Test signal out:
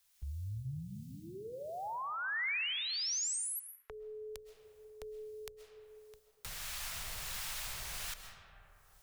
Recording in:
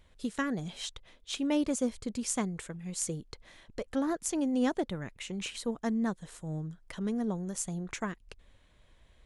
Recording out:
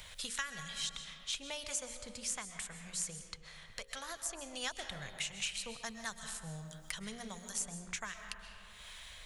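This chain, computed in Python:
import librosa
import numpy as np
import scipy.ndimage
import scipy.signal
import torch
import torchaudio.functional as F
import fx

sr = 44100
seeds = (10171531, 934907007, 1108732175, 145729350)

y = fx.tone_stack(x, sr, knobs='10-0-10')
y = fx.hum_notches(y, sr, base_hz=60, count=9)
y = fx.rider(y, sr, range_db=3, speed_s=0.5)
y = fx.harmonic_tremolo(y, sr, hz=1.4, depth_pct=50, crossover_hz=750.0)
y = fx.rev_freeverb(y, sr, rt60_s=1.5, hf_ratio=0.5, predelay_ms=90, drr_db=9.0)
y = fx.band_squash(y, sr, depth_pct=70)
y = F.gain(torch.from_numpy(y), 5.0).numpy()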